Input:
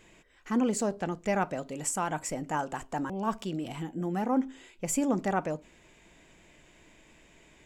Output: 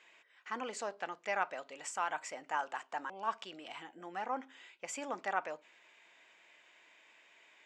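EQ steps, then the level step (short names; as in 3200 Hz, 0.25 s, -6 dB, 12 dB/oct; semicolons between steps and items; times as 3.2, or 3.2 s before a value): Bessel high-pass 1200 Hz, order 2; air absorption 99 m; high shelf 6400 Hz -7.5 dB; +2.0 dB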